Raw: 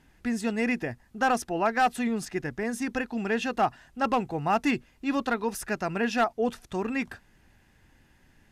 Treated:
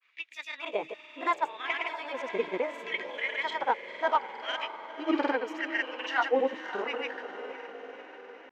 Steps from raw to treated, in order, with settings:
pitch glide at a constant tempo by +5.5 semitones ending unshifted
auto-filter high-pass sine 0.72 Hz 340–2,600 Hz
on a send: feedback delay with all-pass diffusion 541 ms, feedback 61%, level −11 dB
on the sum: granular cloud, pitch spread up and down by 0 semitones
high-frequency loss of the air 180 metres

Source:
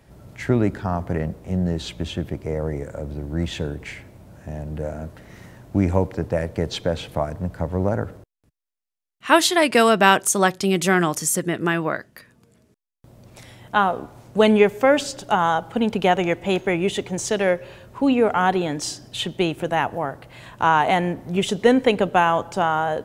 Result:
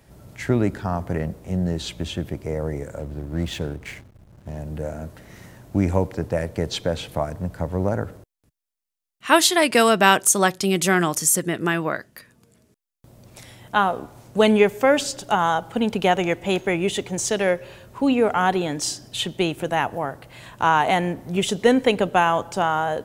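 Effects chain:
0:02.99–0:04.57: slack as between gear wheels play −37.5 dBFS
high-shelf EQ 4,800 Hz +6 dB
level −1 dB

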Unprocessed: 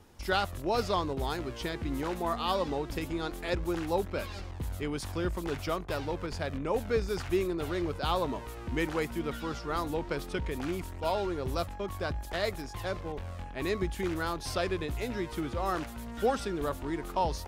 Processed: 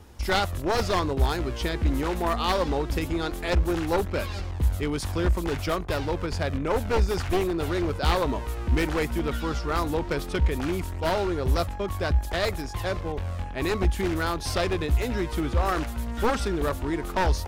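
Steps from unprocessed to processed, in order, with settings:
wavefolder on the positive side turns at −28 dBFS
parametric band 67 Hz +13.5 dB 0.44 octaves
level +6 dB

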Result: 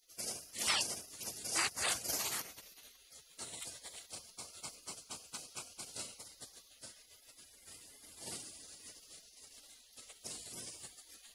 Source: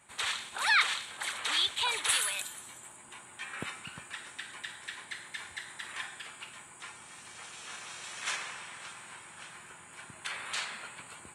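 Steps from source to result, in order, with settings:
gate on every frequency bin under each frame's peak −20 dB weak
level +8.5 dB

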